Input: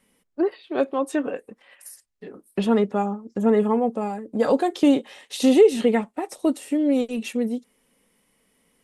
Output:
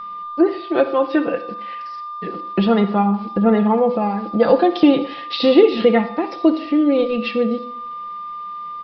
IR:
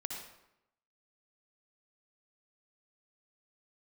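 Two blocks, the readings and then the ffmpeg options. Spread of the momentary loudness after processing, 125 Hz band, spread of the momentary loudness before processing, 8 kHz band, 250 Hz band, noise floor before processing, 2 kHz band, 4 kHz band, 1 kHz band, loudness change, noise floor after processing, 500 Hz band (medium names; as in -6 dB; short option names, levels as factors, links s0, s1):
16 LU, no reading, 12 LU, under -20 dB, +5.0 dB, -69 dBFS, +7.0 dB, +7.5 dB, +8.0 dB, +5.0 dB, -31 dBFS, +5.0 dB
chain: -filter_complex "[0:a]aecho=1:1:5.9:0.61,aeval=exprs='val(0)+0.0112*sin(2*PI*1200*n/s)':c=same,asplit=2[s0][s1];[s1]acompressor=threshold=0.0178:ratio=6,volume=1.26[s2];[s0][s2]amix=inputs=2:normalize=0,aeval=exprs='val(0)*gte(abs(val(0)),0.0075)':c=same,asplit=2[s3][s4];[1:a]atrim=start_sample=2205,asetrate=57330,aresample=44100[s5];[s4][s5]afir=irnorm=-1:irlink=0,volume=0.794[s6];[s3][s6]amix=inputs=2:normalize=0,aresample=11025,aresample=44100"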